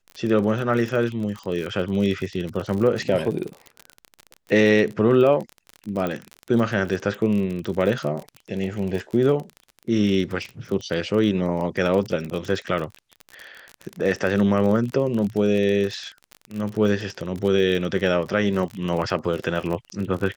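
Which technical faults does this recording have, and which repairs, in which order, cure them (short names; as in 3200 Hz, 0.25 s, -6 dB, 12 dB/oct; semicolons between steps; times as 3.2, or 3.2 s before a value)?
crackle 37/s -27 dBFS
6.07 pop -14 dBFS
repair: de-click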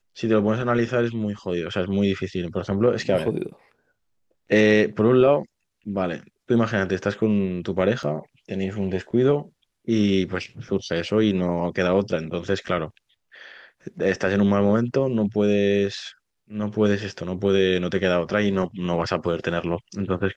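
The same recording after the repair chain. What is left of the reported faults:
none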